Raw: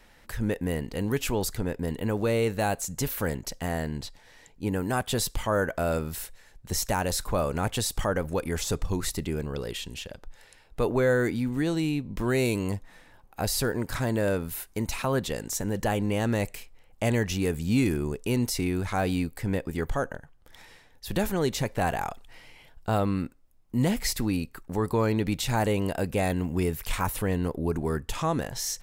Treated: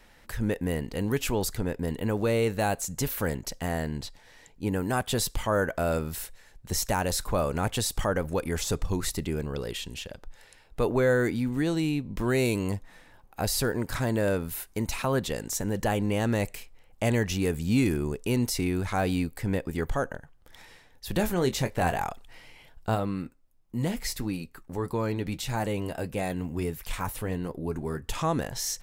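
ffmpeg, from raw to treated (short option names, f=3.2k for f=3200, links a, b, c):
-filter_complex "[0:a]asettb=1/sr,asplit=3[a][b][c];[a]atrim=end=21.164[d];[b]atrim=start=21.16:end=22.04,asetpts=PTS-STARTPTS,afade=t=in:d=0.004:c=qsin,afade=t=out:st=0.876:d=0.004:c=qsin,asplit=2[e][f];[f]adelay=23,volume=-10dB[g];[e][g]amix=inputs=2:normalize=0,atrim=end_sample=38808[h];[c]atrim=start=22.036[i];[d][h]acrossfade=d=0.004:c1=hsin:c2=qsin[j];[j][i]acrossfade=d=0.004:c1=qsin:c2=hsin,asplit=3[k][l][m];[k]afade=t=out:st=22.94:d=0.02[n];[l]flanger=delay=5.7:depth=2.2:regen=-61:speed=1.6:shape=sinusoidal,afade=t=in:st=22.94:d=0.02,afade=t=out:st=28.02:d=0.02[o];[m]afade=t=in:st=28.02:d=0.02[p];[n][o][p]amix=inputs=3:normalize=0"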